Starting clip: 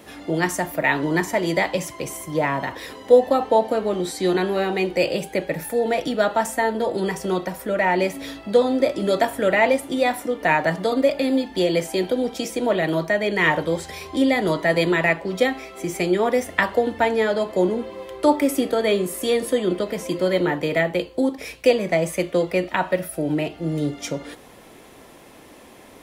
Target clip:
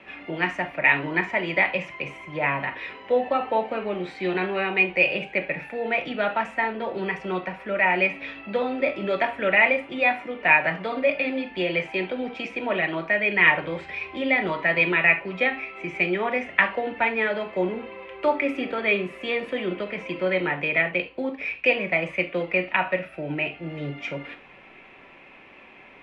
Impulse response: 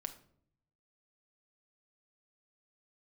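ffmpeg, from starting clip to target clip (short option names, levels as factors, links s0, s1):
-filter_complex "[0:a]acrossover=split=340|1600[s0][s1][s2];[s1]crystalizer=i=9.5:c=0[s3];[s0][s3][s2]amix=inputs=3:normalize=0,lowpass=f=2500:t=q:w=5.9[s4];[1:a]atrim=start_sample=2205,atrim=end_sample=3528[s5];[s4][s5]afir=irnorm=-1:irlink=0,volume=0.531"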